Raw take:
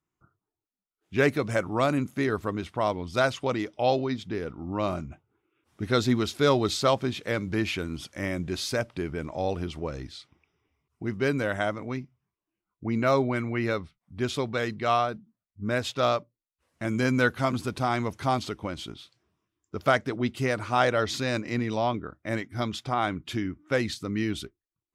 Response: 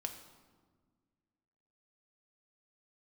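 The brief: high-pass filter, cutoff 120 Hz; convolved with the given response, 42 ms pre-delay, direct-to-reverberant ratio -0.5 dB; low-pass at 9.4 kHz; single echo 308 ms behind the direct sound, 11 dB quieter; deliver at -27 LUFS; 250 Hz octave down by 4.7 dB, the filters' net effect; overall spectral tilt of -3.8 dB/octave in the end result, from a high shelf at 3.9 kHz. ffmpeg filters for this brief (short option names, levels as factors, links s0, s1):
-filter_complex "[0:a]highpass=120,lowpass=9400,equalizer=f=250:t=o:g=-5.5,highshelf=f=3900:g=9,aecho=1:1:308:0.282,asplit=2[s0][s1];[1:a]atrim=start_sample=2205,adelay=42[s2];[s1][s2]afir=irnorm=-1:irlink=0,volume=1.19[s3];[s0][s3]amix=inputs=2:normalize=0,volume=0.794"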